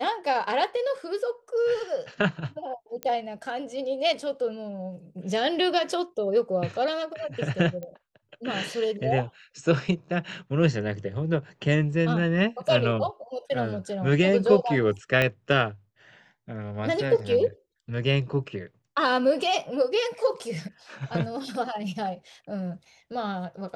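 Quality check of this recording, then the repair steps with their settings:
3.03 pop -16 dBFS
7.83 pop -25 dBFS
15.22 pop -10 dBFS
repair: de-click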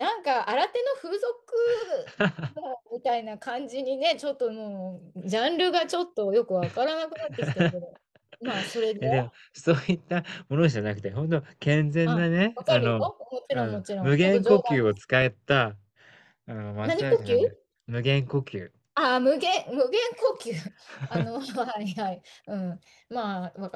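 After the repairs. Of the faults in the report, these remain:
15.22 pop

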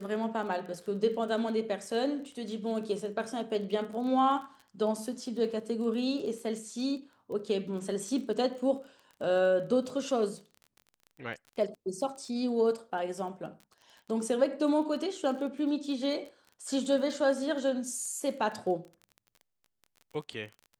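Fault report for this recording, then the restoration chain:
crackle 23/s -40 dBFS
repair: de-click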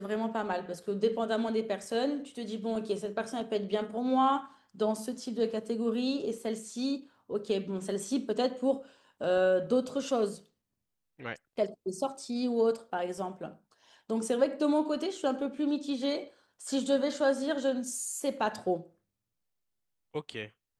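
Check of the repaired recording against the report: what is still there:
none

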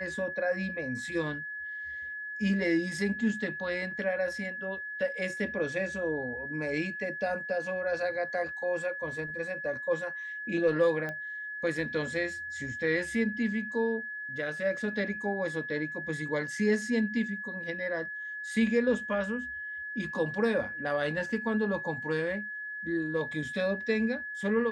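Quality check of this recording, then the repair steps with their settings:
tone 1700 Hz -36 dBFS
11.09 pop -24 dBFS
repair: de-click; notch 1700 Hz, Q 30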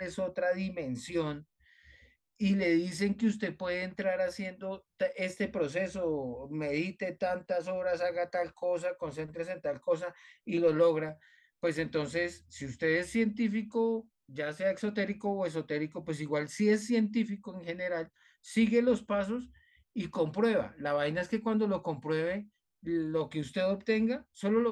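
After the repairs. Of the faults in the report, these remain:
none

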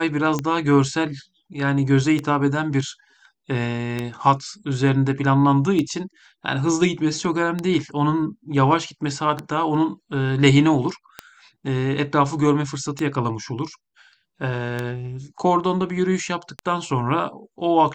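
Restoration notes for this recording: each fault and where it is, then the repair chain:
tick 33 1/3 rpm -11 dBFS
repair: de-click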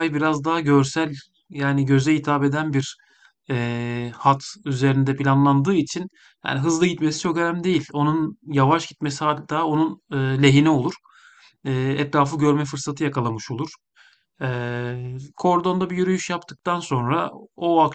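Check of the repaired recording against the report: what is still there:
none

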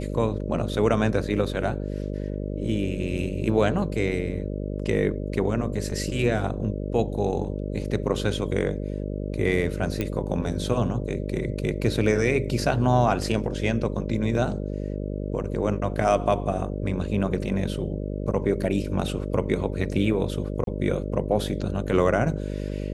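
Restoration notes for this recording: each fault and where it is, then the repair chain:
buzz 50 Hz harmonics 12 -30 dBFS
10.01 pop -13 dBFS
20.64–20.67 gap 32 ms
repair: de-click; de-hum 50 Hz, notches 12; interpolate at 20.64, 32 ms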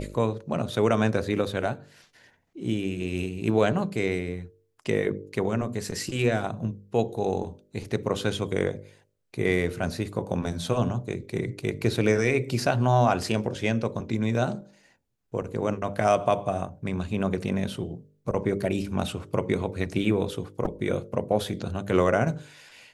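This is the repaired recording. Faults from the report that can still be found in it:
none

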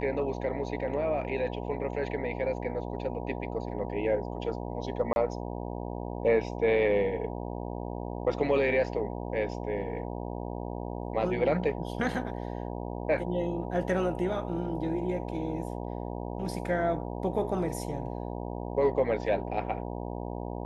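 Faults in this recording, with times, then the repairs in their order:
buzz 60 Hz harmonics 16 -36 dBFS
5.13–5.16 gap 31 ms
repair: de-hum 60 Hz, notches 16; interpolate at 5.13, 31 ms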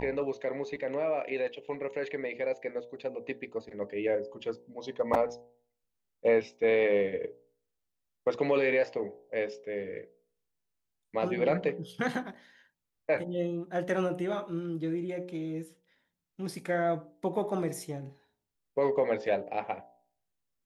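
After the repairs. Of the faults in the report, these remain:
none

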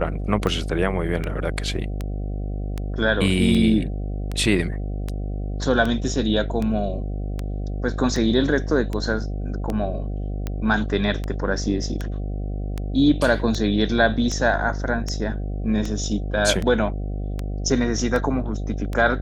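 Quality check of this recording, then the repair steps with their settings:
buzz 50 Hz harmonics 15 -27 dBFS
tick 78 rpm -14 dBFS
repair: de-click; de-hum 50 Hz, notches 15

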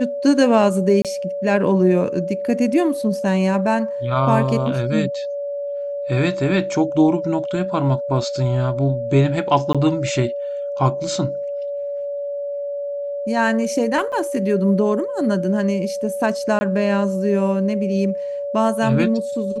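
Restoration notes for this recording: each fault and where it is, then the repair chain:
tone 570 Hz -23 dBFS
1.02–1.05 gap 27 ms
9.73–9.75 gap 16 ms
14.12–14.13 gap 5.3 ms
16.59–16.61 gap 20 ms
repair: notch 570 Hz, Q 30; interpolate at 1.02, 27 ms; interpolate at 9.73, 16 ms; interpolate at 14.12, 5.3 ms; interpolate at 16.59, 20 ms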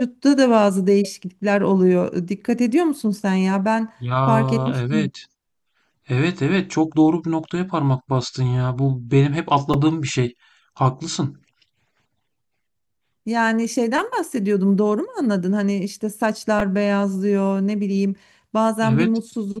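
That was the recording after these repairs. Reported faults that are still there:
none

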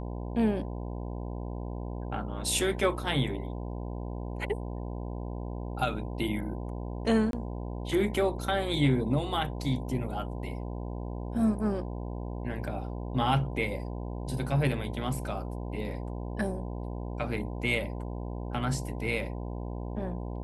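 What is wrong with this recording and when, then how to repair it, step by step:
buzz 60 Hz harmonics 17 -36 dBFS
7.31–7.33 gap 22 ms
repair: de-hum 60 Hz, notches 17; interpolate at 7.31, 22 ms

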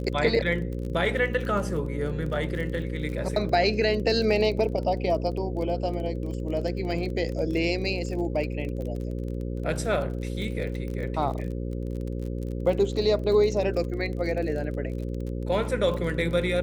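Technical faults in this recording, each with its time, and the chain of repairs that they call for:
buzz 60 Hz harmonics 9 -31 dBFS
crackle 35/s -33 dBFS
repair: de-click; de-hum 60 Hz, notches 9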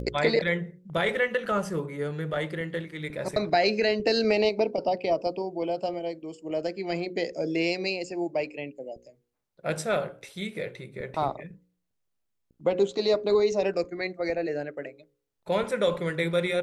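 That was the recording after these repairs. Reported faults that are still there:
none

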